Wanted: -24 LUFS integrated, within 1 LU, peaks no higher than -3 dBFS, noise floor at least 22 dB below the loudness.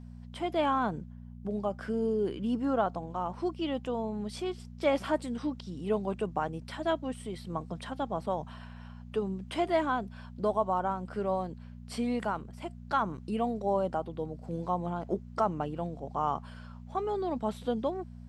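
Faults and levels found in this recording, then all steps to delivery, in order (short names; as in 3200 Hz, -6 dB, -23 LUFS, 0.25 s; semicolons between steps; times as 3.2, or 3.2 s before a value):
hum 60 Hz; harmonics up to 240 Hz; hum level -43 dBFS; loudness -33.0 LUFS; peak -14.5 dBFS; loudness target -24.0 LUFS
-> de-hum 60 Hz, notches 4; gain +9 dB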